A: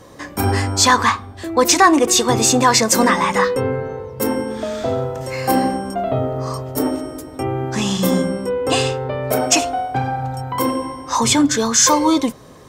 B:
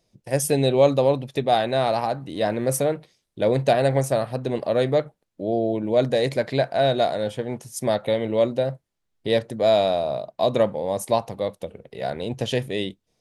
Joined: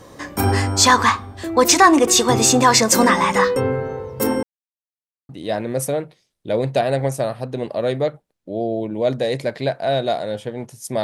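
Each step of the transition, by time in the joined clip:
A
4.43–5.29 mute
5.29 switch to B from 2.21 s

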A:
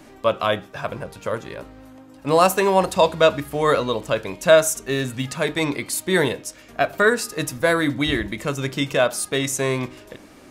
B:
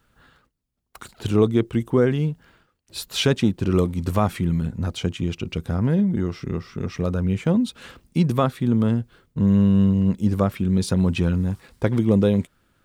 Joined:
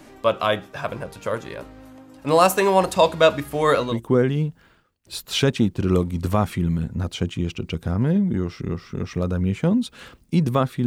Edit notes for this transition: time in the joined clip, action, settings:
A
3.92 switch to B from 1.75 s, crossfade 0.18 s

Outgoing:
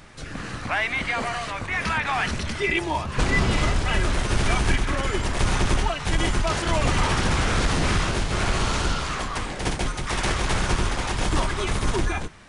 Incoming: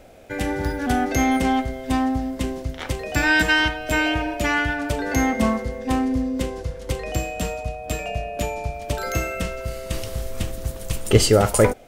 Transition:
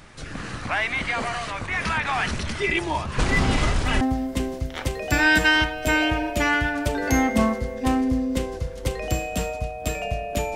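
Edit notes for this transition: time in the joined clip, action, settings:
outgoing
3.3 add incoming from 1.34 s 0.71 s -11 dB
4.01 switch to incoming from 2.05 s

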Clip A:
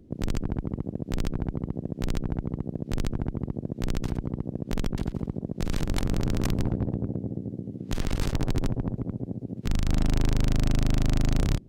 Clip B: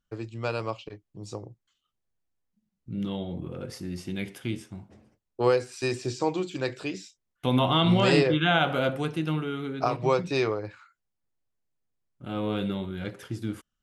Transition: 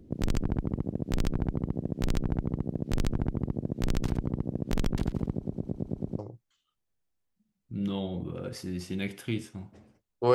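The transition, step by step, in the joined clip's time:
clip A
5.31 stutter in place 0.11 s, 8 plays
6.19 switch to clip B from 1.36 s

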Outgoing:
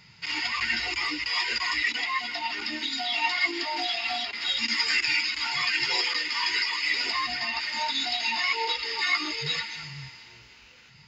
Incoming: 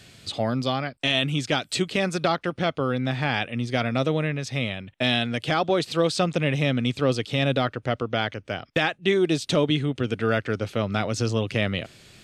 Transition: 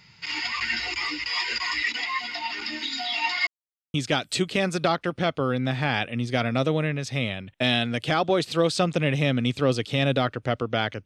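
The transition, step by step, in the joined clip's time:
outgoing
3.47–3.94 mute
3.94 switch to incoming from 1.34 s

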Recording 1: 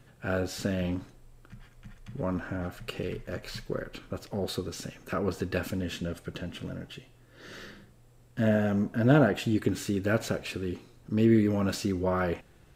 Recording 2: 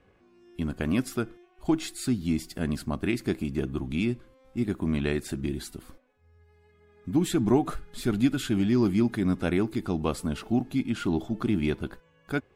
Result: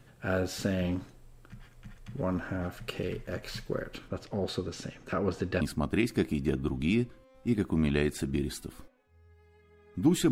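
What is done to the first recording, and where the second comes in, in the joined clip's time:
recording 1
4.08–5.61 air absorption 53 m
5.61 switch to recording 2 from 2.71 s

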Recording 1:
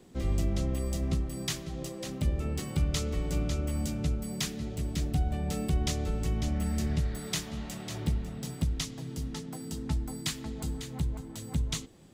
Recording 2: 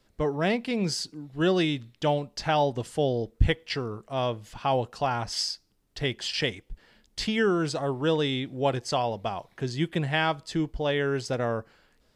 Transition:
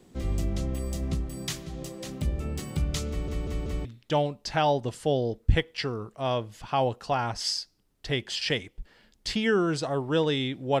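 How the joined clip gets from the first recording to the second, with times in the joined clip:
recording 1
3.09 stutter in place 0.19 s, 4 plays
3.85 switch to recording 2 from 1.77 s

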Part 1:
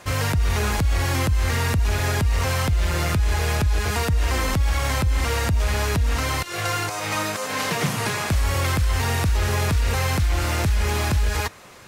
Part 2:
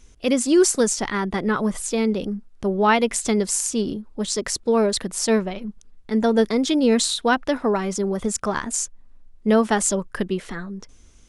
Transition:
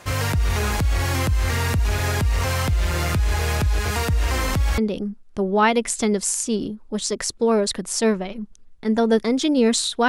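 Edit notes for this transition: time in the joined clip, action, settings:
part 1
4.78 switch to part 2 from 2.04 s

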